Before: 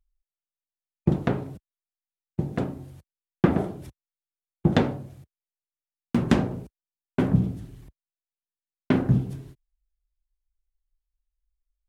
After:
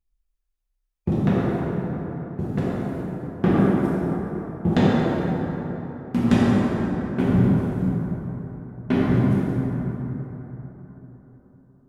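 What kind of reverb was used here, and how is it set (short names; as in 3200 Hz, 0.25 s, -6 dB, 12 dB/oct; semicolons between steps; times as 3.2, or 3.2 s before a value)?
plate-style reverb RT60 4.1 s, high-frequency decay 0.45×, DRR -8 dB; gain -4 dB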